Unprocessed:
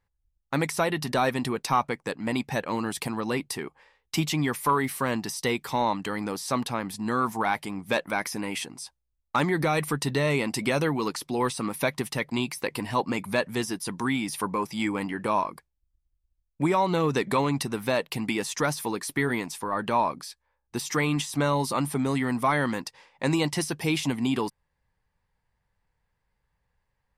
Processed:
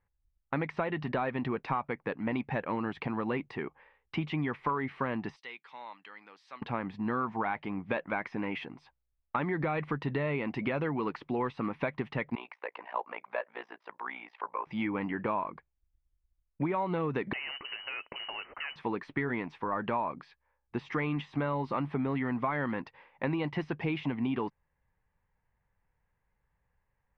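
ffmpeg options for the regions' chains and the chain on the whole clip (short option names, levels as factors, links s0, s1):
-filter_complex "[0:a]asettb=1/sr,asplit=3[s0][s1][s2];[s0]atrim=end=5.364[s3];[s1]atrim=start=5.36:end=6.62,asetpts=PTS-STARTPTS,afade=t=in:d=0.004:c=qsin,afade=t=out:st=1.256:d=0.004:c=qsin,highpass=97,aderivative[s4];[s2]atrim=start=6.616[s5];[s3][s4]acrossfade=d=0.004:c1=hsin:c2=qsin[s6];[s6][s5]acrossfade=d=0.004:c1=qsin:c2=hsin,asettb=1/sr,asplit=3[s7][s8][s9];[s7]atrim=end=12.354[s10];[s8]atrim=start=12.35:end=14.67,asetpts=PTS-STARTPTS,afade=t=in:d=0.004:c=qsin,afade=t=out:st=2.316:d=0.004:c=qsin,highpass=f=590:w=0.5412,highpass=f=590:w=1.3066,aemphasis=mode=reproduction:type=riaa,tremolo=f=59:d=0.889[s11];[s9]atrim=start=14.666[s12];[s10][s11]acrossfade=d=0.004:c1=hsin:c2=qsin[s13];[s13][s12]acrossfade=d=0.004:c1=qsin:c2=hsin,asettb=1/sr,asplit=3[s14][s15][s16];[s14]atrim=end=17.334[s17];[s15]atrim=start=17.33:end=18.76,asetpts=PTS-STARTPTS,afade=t=in:d=0.004:c=qsin,afade=t=out:st=1.426:d=0.004:c=qsin,acompressor=threshold=0.0316:ratio=10:attack=3.2:release=140:knee=1:detection=peak,acrusher=bits=2:mode=log:mix=0:aa=0.000001,lowpass=f=2600:t=q:w=0.5098,lowpass=f=2600:t=q:w=0.6013,lowpass=f=2600:t=q:w=0.9,lowpass=f=2600:t=q:w=2.563,afreqshift=-3100[s18];[s16]atrim=start=18.756[s19];[s17][s18]acrossfade=d=0.004:c1=hsin:c2=qsin[s20];[s20][s19]acrossfade=d=0.004:c1=qsin:c2=hsin,acompressor=threshold=0.0501:ratio=6,lowpass=f=2600:w=0.5412,lowpass=f=2600:w=1.3066,volume=0.841"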